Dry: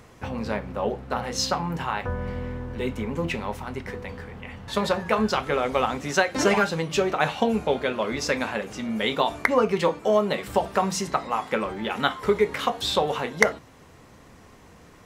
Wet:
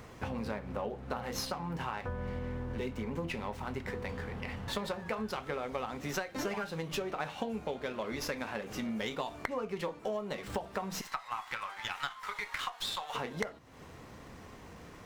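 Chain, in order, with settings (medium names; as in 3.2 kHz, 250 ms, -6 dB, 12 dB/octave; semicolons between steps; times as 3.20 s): 11.01–13.15 s: high-pass 910 Hz 24 dB/octave; compression 6:1, threshold -34 dBFS, peak gain reduction 20.5 dB; sliding maximum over 3 samples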